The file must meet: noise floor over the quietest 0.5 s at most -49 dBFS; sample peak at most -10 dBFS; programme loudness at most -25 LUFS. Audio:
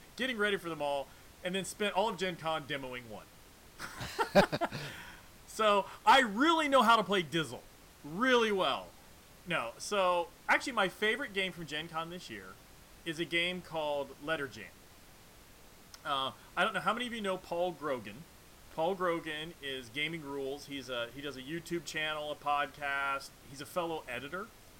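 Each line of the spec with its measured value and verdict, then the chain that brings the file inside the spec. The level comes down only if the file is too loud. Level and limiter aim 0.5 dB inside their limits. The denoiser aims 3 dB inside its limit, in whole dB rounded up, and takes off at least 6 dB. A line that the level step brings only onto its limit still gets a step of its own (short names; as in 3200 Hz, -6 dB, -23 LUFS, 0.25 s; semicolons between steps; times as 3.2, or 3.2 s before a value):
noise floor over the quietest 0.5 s -57 dBFS: OK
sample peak -16.0 dBFS: OK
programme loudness -33.0 LUFS: OK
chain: none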